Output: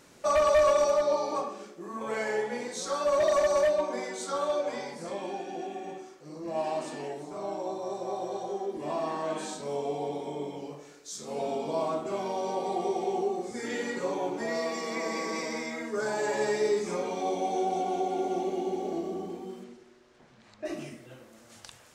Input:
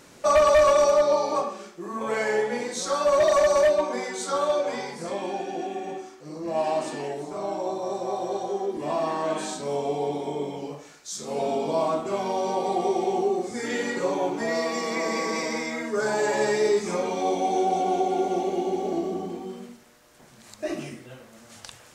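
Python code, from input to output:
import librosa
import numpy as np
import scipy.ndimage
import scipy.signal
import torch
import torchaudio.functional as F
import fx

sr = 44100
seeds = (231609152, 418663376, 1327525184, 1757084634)

p1 = fx.lowpass(x, sr, hz=fx.line((19.63, 7200.0), (20.64, 3200.0)), slope=12, at=(19.63, 20.64), fade=0.02)
p2 = p1 + fx.echo_banded(p1, sr, ms=96, feedback_pct=71, hz=370.0, wet_db=-12, dry=0)
y = p2 * librosa.db_to_amplitude(-5.5)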